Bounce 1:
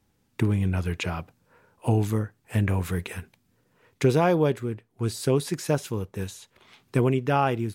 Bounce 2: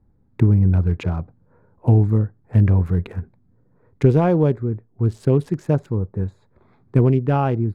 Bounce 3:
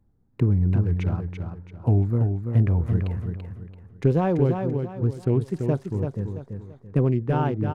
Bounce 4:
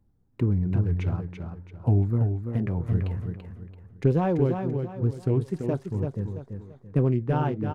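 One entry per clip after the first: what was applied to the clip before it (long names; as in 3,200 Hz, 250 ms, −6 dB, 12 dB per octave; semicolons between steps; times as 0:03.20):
adaptive Wiener filter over 15 samples; spectral tilt −3 dB per octave
tape wow and flutter 140 cents; on a send: repeating echo 336 ms, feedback 34%, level −6 dB; on the sum: level −5.5 dB
flanger 0.49 Hz, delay 0 ms, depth 8.3 ms, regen −65%; level +2 dB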